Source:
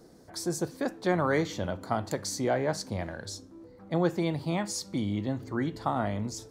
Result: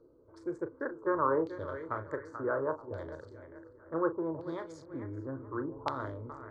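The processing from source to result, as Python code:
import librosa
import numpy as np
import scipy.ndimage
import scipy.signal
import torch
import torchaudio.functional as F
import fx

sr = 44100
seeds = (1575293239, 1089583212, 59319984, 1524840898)

y = fx.wiener(x, sr, points=25)
y = fx.band_shelf(y, sr, hz=3400.0, db=-8.5, octaves=1.7)
y = fx.fixed_phaser(y, sr, hz=740.0, stages=6)
y = fx.doubler(y, sr, ms=37.0, db=-10.5)
y = fx.echo_feedback(y, sr, ms=435, feedback_pct=37, wet_db=-12.0)
y = fx.filter_lfo_lowpass(y, sr, shape='saw_down', hz=0.68, low_hz=820.0, high_hz=4200.0, q=3.0)
y = fx.low_shelf(y, sr, hz=200.0, db=-4.5)
y = F.gain(torch.from_numpy(y), -2.0).numpy()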